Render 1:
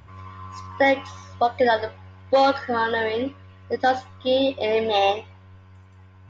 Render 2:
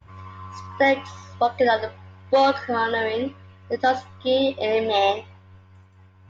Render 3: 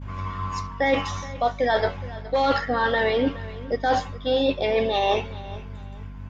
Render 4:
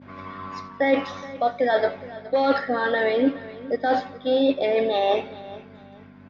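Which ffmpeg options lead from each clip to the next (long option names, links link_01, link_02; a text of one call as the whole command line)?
ffmpeg -i in.wav -af "agate=range=-33dB:threshold=-45dB:ratio=3:detection=peak" out.wav
ffmpeg -i in.wav -af "areverse,acompressor=threshold=-27dB:ratio=12,areverse,aecho=1:1:419|838:0.126|0.0352,aeval=exprs='val(0)+0.00562*(sin(2*PI*50*n/s)+sin(2*PI*2*50*n/s)/2+sin(2*PI*3*50*n/s)/3+sin(2*PI*4*50*n/s)/4+sin(2*PI*5*50*n/s)/5)':channel_layout=same,volume=8.5dB" out.wav
ffmpeg -i in.wav -af "highpass=230,equalizer=frequency=270:width_type=q:width=4:gain=6,equalizer=frequency=610:width_type=q:width=4:gain=4,equalizer=frequency=990:width_type=q:width=4:gain=-7,equalizer=frequency=2900:width_type=q:width=4:gain=-7,lowpass=frequency=4500:width=0.5412,lowpass=frequency=4500:width=1.3066,aecho=1:1:90|180|270|360:0.0794|0.0429|0.0232|0.0125" out.wav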